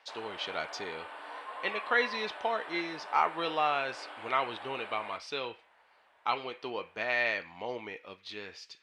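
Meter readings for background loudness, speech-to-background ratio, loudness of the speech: -44.0 LUFS, 10.5 dB, -33.5 LUFS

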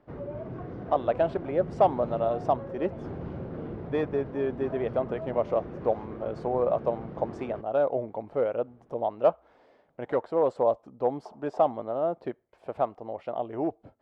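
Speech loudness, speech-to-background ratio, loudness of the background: -29.0 LUFS, 10.0 dB, -39.0 LUFS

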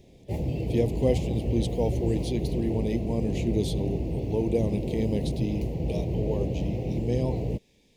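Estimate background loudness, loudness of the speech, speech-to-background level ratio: -30.5 LUFS, -31.0 LUFS, -0.5 dB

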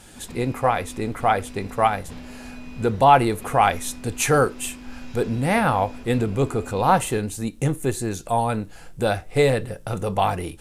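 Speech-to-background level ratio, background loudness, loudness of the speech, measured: 18.5 dB, -41.0 LUFS, -22.5 LUFS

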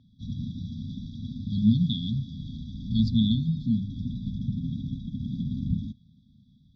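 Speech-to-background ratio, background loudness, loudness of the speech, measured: 8.0 dB, -34.5 LUFS, -26.5 LUFS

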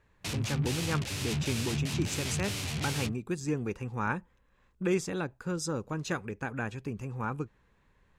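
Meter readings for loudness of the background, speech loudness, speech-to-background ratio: -33.5 LUFS, -35.0 LUFS, -1.5 dB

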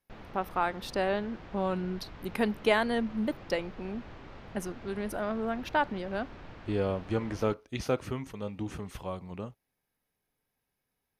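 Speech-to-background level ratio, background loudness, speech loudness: 15.5 dB, -48.5 LUFS, -33.0 LUFS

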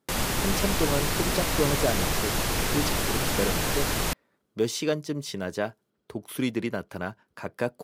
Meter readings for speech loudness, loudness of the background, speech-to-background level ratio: -31.5 LUFS, -26.5 LUFS, -5.0 dB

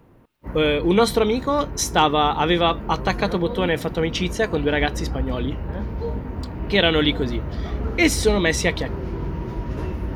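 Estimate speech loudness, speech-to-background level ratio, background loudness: -21.0 LUFS, 9.5 dB, -30.5 LUFS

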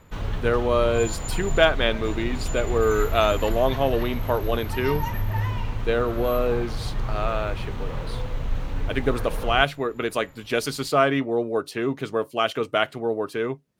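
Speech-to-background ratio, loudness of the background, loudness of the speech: 6.5 dB, -31.0 LUFS, -24.5 LUFS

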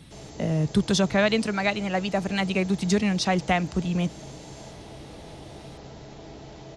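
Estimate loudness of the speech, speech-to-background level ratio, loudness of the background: -25.0 LUFS, 18.0 dB, -43.0 LUFS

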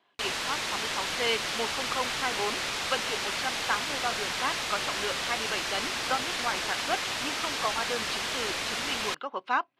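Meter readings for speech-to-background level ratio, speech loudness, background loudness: -4.0 dB, -34.0 LUFS, -30.0 LUFS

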